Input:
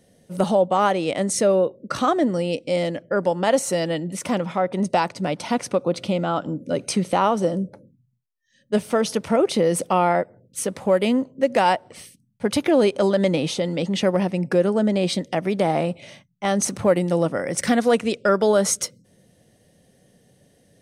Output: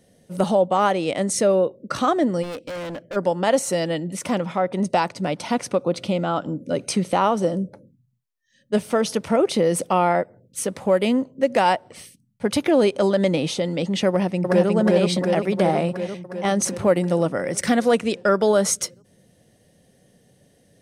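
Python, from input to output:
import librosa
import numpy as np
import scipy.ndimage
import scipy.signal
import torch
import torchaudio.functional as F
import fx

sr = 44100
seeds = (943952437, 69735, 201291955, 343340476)

y = fx.clip_hard(x, sr, threshold_db=-29.0, at=(2.42, 3.15), fade=0.02)
y = fx.echo_throw(y, sr, start_s=14.08, length_s=0.62, ms=360, feedback_pct=70, wet_db=-1.0)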